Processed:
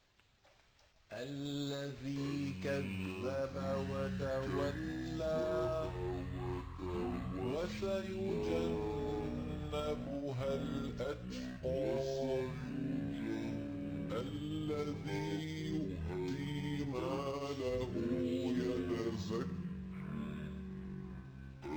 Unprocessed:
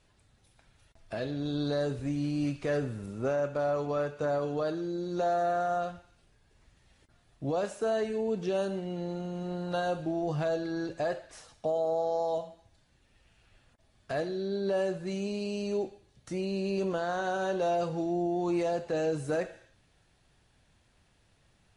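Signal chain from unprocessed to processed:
pitch glide at a constant tempo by −6.5 semitones starting unshifted
first-order pre-emphasis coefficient 0.8
delay with pitch and tempo change per echo 500 ms, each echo −7 semitones, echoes 3
linearly interpolated sample-rate reduction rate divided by 4×
level +5.5 dB

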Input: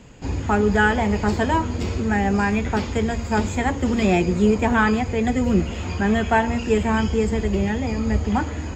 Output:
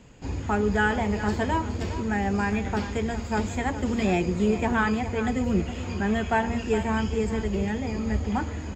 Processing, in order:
single-tap delay 412 ms −12 dB
level −5.5 dB

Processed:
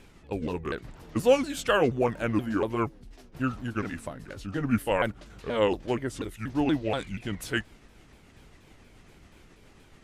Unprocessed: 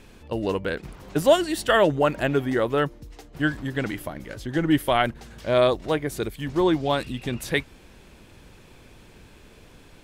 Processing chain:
pitch shifter swept by a sawtooth −5.5 semitones, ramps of 239 ms
level −3.5 dB

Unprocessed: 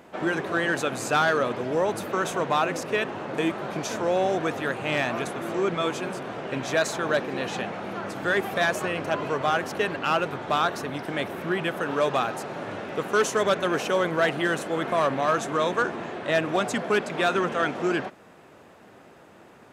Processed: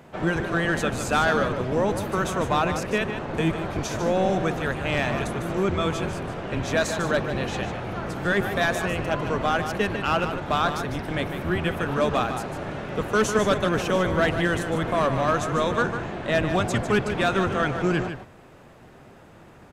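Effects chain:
sub-octave generator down 1 octave, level +3 dB
single-tap delay 150 ms −9 dB

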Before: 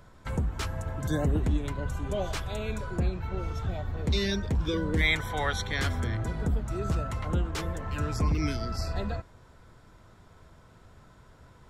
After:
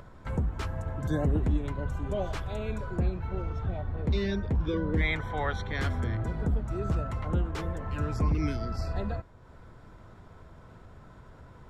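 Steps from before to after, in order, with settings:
0:03.42–0:05.75: high-shelf EQ 6,600 Hz −12 dB
upward compression, threshold −42 dBFS
high-shelf EQ 2,900 Hz −11 dB

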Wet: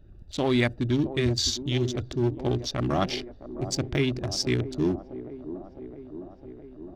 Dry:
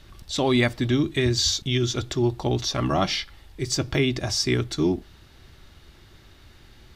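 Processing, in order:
adaptive Wiener filter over 41 samples
delay with a band-pass on its return 661 ms, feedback 70%, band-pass 430 Hz, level −11 dB
level −2 dB

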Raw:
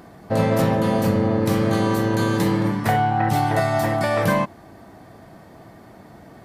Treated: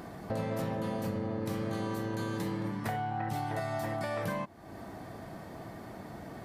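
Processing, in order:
downward compressor 3 to 1, threshold −37 dBFS, peak gain reduction 16 dB

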